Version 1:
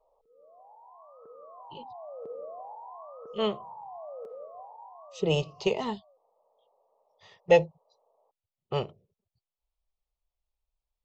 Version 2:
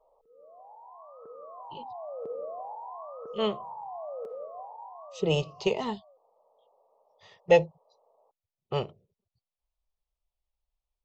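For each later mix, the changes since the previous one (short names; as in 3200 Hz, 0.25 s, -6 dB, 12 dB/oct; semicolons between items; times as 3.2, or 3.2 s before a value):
background +3.5 dB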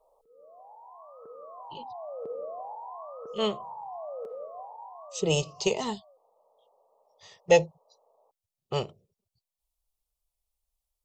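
speech: remove LPF 3200 Hz 12 dB/oct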